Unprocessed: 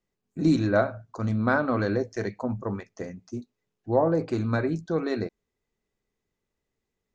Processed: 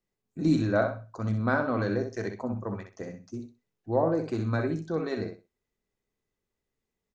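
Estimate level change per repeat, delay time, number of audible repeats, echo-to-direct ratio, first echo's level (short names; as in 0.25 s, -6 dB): -13.5 dB, 63 ms, 3, -7.0 dB, -7.0 dB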